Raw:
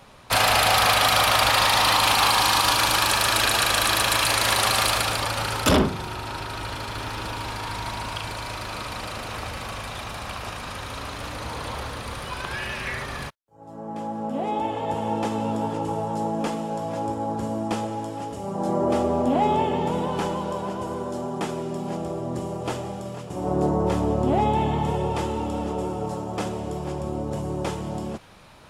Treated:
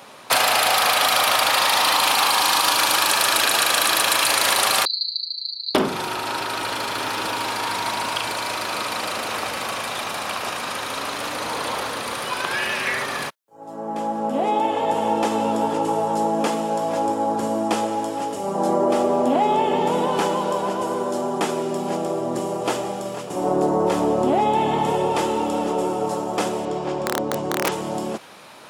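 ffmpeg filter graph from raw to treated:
-filter_complex "[0:a]asettb=1/sr,asplit=3[s0][s1][s2];[s0]atrim=end=4.854[s3];[s1]atrim=start=4.85:end=5.75,asetpts=PTS-STARTPTS,afade=t=in:d=0.004:c=qsin,afade=t=out:st=0.896:d=0.004:c=qsin,asuperpass=centerf=4300:order=20:qfactor=5.9,aecho=1:1:6.5:0.52,atrim=end_sample=39690[s4];[s2]atrim=start=5.746[s5];[s3][s4]acrossfade=d=0.004:c1=hsin:c2=qsin[s6];[s6][s5]acrossfade=d=0.004:c1=qsin:c2=hsin,asettb=1/sr,asplit=3[s7][s8][s9];[s7]atrim=end=26.654[s10];[s8]atrim=start=26.65:end=27.72,asetpts=PTS-STARTPTS,afade=t=in:d=0.004:c=qsin,afade=t=out:st=1.066:d=0.004:c=qsin,lowpass=5200,aeval=exprs='(mod(8.41*val(0)+1,2)-1)/8.41':c=same[s11];[s9]atrim=start=27.716[s12];[s10][s11]acrossfade=d=0.004:c1=hsin:c2=qsin[s13];[s13][s12]acrossfade=d=0.004:c1=qsin:c2=hsin,highpass=260,highshelf=f=8900:g=4.5,acompressor=threshold=0.0794:ratio=6,volume=2.24"

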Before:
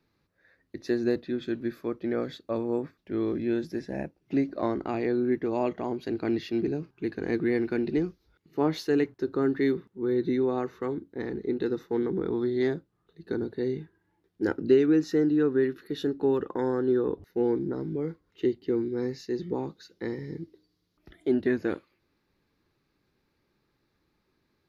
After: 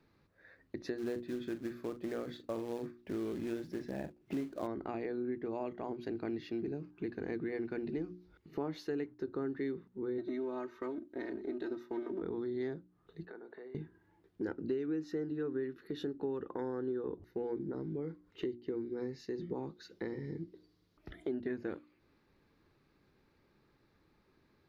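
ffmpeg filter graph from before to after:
-filter_complex "[0:a]asettb=1/sr,asplit=3[s0][s1][s2];[s0]atrim=end=0.984[s3];[s1]atrim=start=0.98:end=4.67,asetpts=PTS-STARTPTS,afade=t=in:d=0.004:c=qsin,afade=t=out:st=3.686:d=0.004:c=qsin,acrusher=bits=4:mode=log:mix=0:aa=0.000001,asplit=2[s4][s5];[s5]adelay=41,volume=0.266[s6];[s4][s6]amix=inputs=2:normalize=0,atrim=end_sample=162729[s7];[s2]atrim=start=4.666[s8];[s3][s7]acrossfade=d=0.004:c1=hsin:c2=qsin[s9];[s9][s8]acrossfade=d=0.004:c1=qsin:c2=hsin,asettb=1/sr,asplit=3[s10][s11][s12];[s10]atrim=end=10.184[s13];[s11]atrim=start=10.18:end=12.22,asetpts=PTS-STARTPTS,afade=t=in:d=0.004:c=qsin,afade=t=out:st=2.036:d=0.004:c=qsin,aeval=exprs='if(lt(val(0),0),0.708*val(0),val(0))':c=same,highpass=f=340:p=1,aecho=1:1:3.2:0.75,atrim=end_sample=89964[s14];[s12]atrim=start=12.216[s15];[s13][s14]acrossfade=d=0.004:c1=hsin:c2=qsin[s16];[s16][s15]acrossfade=d=0.004:c1=qsin:c2=hsin,asettb=1/sr,asplit=3[s17][s18][s19];[s17]atrim=end=13.254[s20];[s18]atrim=start=13.25:end=13.75,asetpts=PTS-STARTPTS,afade=t=in:d=0.004:c=qsin,afade=t=out:st=0.496:d=0.004:c=qsin,acompressor=threshold=0.01:ratio=6:attack=3.2:release=140:knee=1:detection=peak,highpass=660,lowpass=2100[s21];[s19]atrim=start=13.746[s22];[s20][s21]acrossfade=d=0.004:c1=hsin:c2=qsin[s23];[s23][s22]acrossfade=d=0.004:c1=qsin:c2=hsin,highshelf=f=3800:g=-8.5,bandreject=f=60:t=h:w=6,bandreject=f=120:t=h:w=6,bandreject=f=180:t=h:w=6,bandreject=f=240:t=h:w=6,bandreject=f=300:t=h:w=6,bandreject=f=360:t=h:w=6,acompressor=threshold=0.00631:ratio=3,volume=1.58"

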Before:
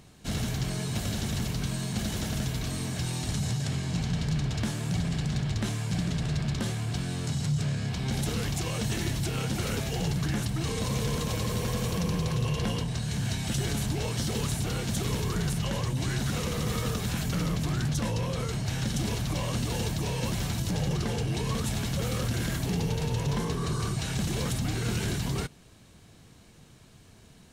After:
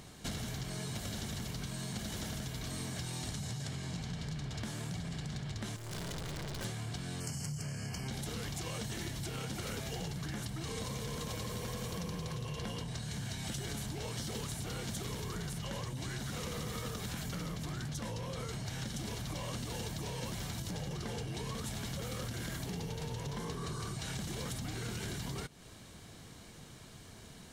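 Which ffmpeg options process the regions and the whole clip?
-filter_complex "[0:a]asettb=1/sr,asplit=3[s0][s1][s2];[s0]atrim=end=5.764[s3];[s1]atrim=start=5.76:end=6.65,asetpts=PTS-STARTPTS,afade=t=in:d=0.004:c=qsin,afade=t=out:st=0.886:d=0.004:c=qsin,aecho=1:1:2:0.65,atrim=end_sample=39249,acontrast=26,aeval=exprs='(tanh(89.1*val(0)+0.45)-tanh(0.45))/89.1':c=same[s4];[s2]atrim=start=6.646[s5];[s3][s4]acrossfade=d=0.004:c1=hsin:c2=qsin[s6];[s6][s5]acrossfade=d=0.004:c1=qsin:c2=hsin,asettb=1/sr,asplit=3[s7][s8][s9];[s7]atrim=end=7.204[s10];[s8]atrim=start=7.2:end=8.08,asetpts=PTS-STARTPTS,afade=t=in:d=0.004:c=qsin,afade=t=out:st=0.876:d=0.004:c=qsin,asuperstop=centerf=3700:order=8:qfactor=3.1,highshelf=f=7100:g=11[s11];[s9]atrim=start=8.076[s12];[s10][s11]acrossfade=d=0.004:c1=hsin:c2=qsin[s13];[s13][s12]acrossfade=d=0.004:c1=qsin:c2=hsin,acompressor=threshold=0.0112:ratio=6,lowshelf=f=330:g=-4,bandreject=f=2600:w=15,volume=1.58"

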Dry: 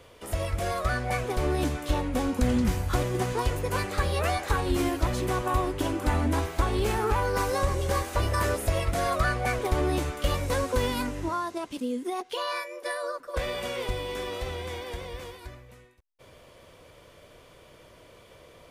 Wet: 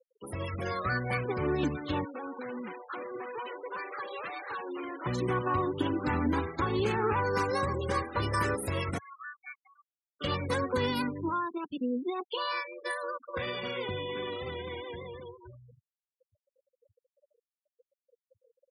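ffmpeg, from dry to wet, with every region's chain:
-filter_complex "[0:a]asettb=1/sr,asplit=3[s0][s1][s2];[s0]atrim=end=2.044[s3];[s1]atrim=start=2.04:end=5.06,asetpts=PTS-STARTPTS,afade=t=in:d=0.004:c=qsin,afade=t=out:st=3.016:d=0.004:c=qsin,highpass=530,aemphasis=mode=reproduction:type=50fm,asoftclip=type=hard:threshold=0.0237[s4];[s2]atrim=start=5.056[s5];[s3][s4]acrossfade=d=0.004:c1=hsin:c2=qsin[s6];[s6][s5]acrossfade=d=0.004:c1=qsin:c2=hsin,asettb=1/sr,asplit=3[s7][s8][s9];[s7]atrim=end=8.984[s10];[s8]atrim=start=8.98:end=10.21,asetpts=PTS-STARTPTS,afade=t=in:d=0.004:c=qsin,afade=t=out:st=1.226:d=0.004:c=qsin,asuperpass=centerf=1400:order=12:qfactor=0.8,aderivative[s11];[s9]atrim=start=10.206[s12];[s10][s11]acrossfade=d=0.004:c1=hsin:c2=qsin[s13];[s13][s12]acrossfade=d=0.004:c1=qsin:c2=hsin,afftfilt=real='re*gte(hypot(re,im),0.02)':imag='im*gte(hypot(re,im),0.02)':win_size=1024:overlap=0.75,highpass=f=100:w=0.5412,highpass=f=100:w=1.3066,equalizer=f=660:t=o:w=0.32:g=-14.5"

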